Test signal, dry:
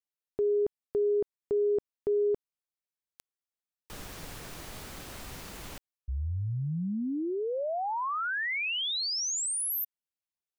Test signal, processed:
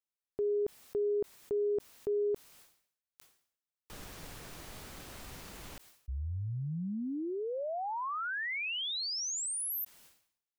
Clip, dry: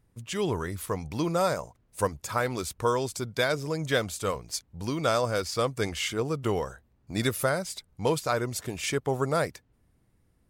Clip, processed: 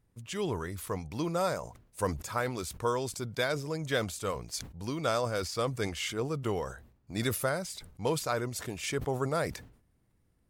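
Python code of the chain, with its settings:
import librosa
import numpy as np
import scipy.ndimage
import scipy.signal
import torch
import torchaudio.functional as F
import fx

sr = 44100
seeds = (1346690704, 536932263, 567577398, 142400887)

y = fx.sustainer(x, sr, db_per_s=99.0)
y = y * librosa.db_to_amplitude(-4.5)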